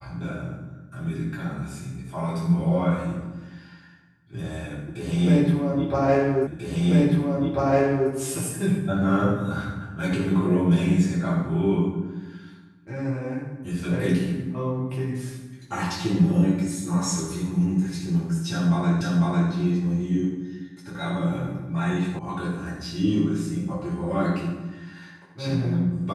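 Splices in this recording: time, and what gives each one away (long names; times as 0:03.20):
0:06.47: the same again, the last 1.64 s
0:19.01: the same again, the last 0.5 s
0:22.19: cut off before it has died away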